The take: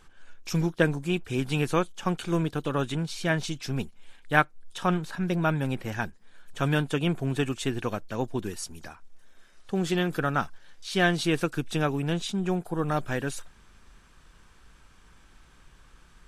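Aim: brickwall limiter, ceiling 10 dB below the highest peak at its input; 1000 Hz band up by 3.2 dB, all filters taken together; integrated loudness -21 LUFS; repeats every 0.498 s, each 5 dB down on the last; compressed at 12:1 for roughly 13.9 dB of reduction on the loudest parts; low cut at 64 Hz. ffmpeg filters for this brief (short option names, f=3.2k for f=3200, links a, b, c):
-af "highpass=64,equalizer=f=1k:t=o:g=4.5,acompressor=threshold=-26dB:ratio=12,alimiter=limit=-23dB:level=0:latency=1,aecho=1:1:498|996|1494|1992|2490|2988|3486:0.562|0.315|0.176|0.0988|0.0553|0.031|0.0173,volume=13dB"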